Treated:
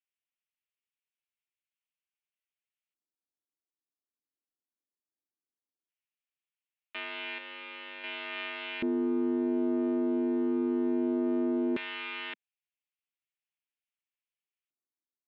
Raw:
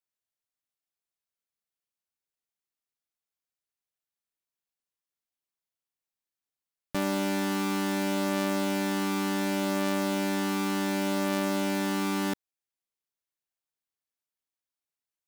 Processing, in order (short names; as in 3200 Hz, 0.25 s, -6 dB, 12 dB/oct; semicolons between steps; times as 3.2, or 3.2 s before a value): 7.38–8.04 hard clip -31.5 dBFS, distortion -15 dB; mistuned SSB +53 Hz 150–3500 Hz; LFO band-pass square 0.17 Hz 290–2600 Hz; gain +4 dB